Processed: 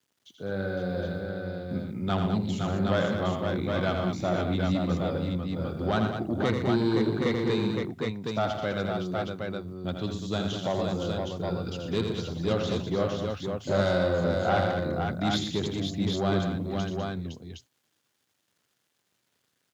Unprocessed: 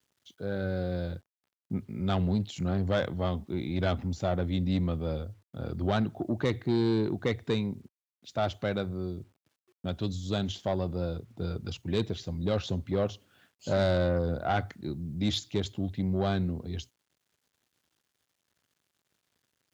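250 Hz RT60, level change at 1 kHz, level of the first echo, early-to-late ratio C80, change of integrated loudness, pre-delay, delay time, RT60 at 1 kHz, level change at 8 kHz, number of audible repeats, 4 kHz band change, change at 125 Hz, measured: none, +5.0 dB, -6.5 dB, none, +2.5 dB, none, 82 ms, none, n/a, 5, +3.5 dB, +1.0 dB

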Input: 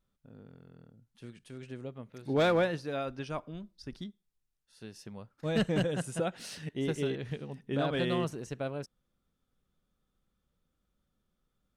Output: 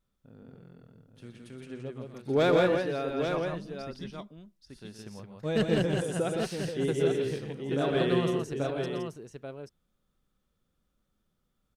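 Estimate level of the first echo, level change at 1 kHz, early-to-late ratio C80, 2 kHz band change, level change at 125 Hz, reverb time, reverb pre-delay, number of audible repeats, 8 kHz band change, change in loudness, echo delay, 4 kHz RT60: -9.0 dB, +2.5 dB, none, +2.5 dB, +2.5 dB, none, none, 3, +2.5 dB, +4.0 dB, 0.121 s, none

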